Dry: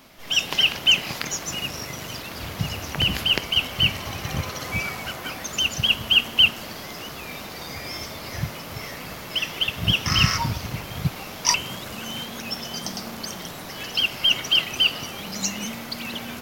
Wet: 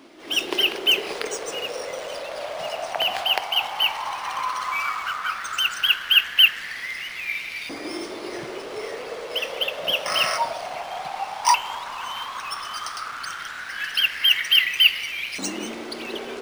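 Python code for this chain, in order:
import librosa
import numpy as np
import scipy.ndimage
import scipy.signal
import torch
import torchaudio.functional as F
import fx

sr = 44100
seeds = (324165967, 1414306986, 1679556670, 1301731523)

y = fx.filter_lfo_highpass(x, sr, shape='saw_up', hz=0.13, low_hz=310.0, high_hz=2400.0, q=6.7)
y = np.interp(np.arange(len(y)), np.arange(len(y))[::3], y[::3])
y = F.gain(torch.from_numpy(y), -1.0).numpy()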